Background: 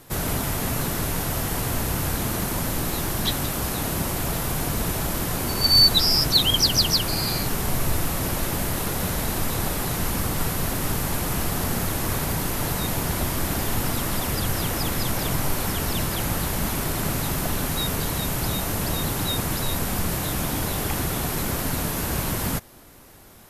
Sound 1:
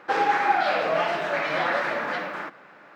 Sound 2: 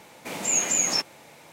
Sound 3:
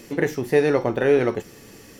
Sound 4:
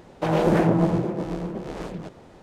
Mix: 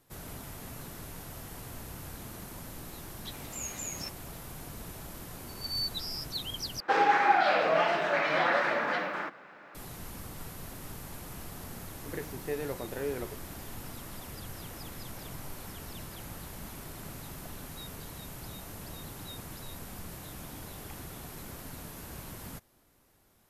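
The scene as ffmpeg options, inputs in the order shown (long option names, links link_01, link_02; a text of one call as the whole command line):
ffmpeg -i bed.wav -i cue0.wav -i cue1.wav -i cue2.wav -filter_complex "[0:a]volume=-18dB,asplit=2[link_01][link_02];[link_01]atrim=end=6.804[link_03];[1:a]atrim=end=2.95,asetpts=PTS-STARTPTS,volume=-2dB[link_04];[link_02]atrim=start=9.746[link_05];[2:a]atrim=end=1.52,asetpts=PTS-STARTPTS,volume=-16dB,afade=type=in:duration=0.004:curve=hsin,afade=type=out:start_time=1.516:duration=0.004:curve=hsin,adelay=3080[link_06];[3:a]atrim=end=1.99,asetpts=PTS-STARTPTS,volume=-17dB,afade=type=in:duration=0.004:curve=hsin,afade=type=out:start_time=1.986:duration=0.004:curve=hsin,adelay=11950[link_07];[link_03][link_04]acrossfade=duration=0.004:curve1=hsin:curve2=hsin[link_08];[link_08][link_05]acrossfade=duration=0.004:curve1=hsin:curve2=hsin[link_09];[link_09][link_06][link_07]amix=inputs=3:normalize=0" out.wav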